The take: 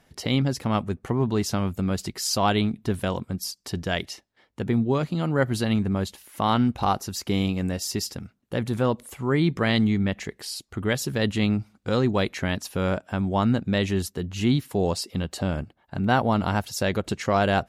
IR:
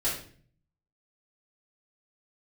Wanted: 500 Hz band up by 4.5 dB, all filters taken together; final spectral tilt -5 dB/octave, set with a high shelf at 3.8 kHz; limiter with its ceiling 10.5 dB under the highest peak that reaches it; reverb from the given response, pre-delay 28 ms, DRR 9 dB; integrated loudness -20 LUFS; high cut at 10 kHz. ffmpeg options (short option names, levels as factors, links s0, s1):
-filter_complex "[0:a]lowpass=10000,equalizer=f=500:t=o:g=5.5,highshelf=f=3800:g=5,alimiter=limit=0.15:level=0:latency=1,asplit=2[s0][s1];[1:a]atrim=start_sample=2205,adelay=28[s2];[s1][s2]afir=irnorm=-1:irlink=0,volume=0.141[s3];[s0][s3]amix=inputs=2:normalize=0,volume=2.24"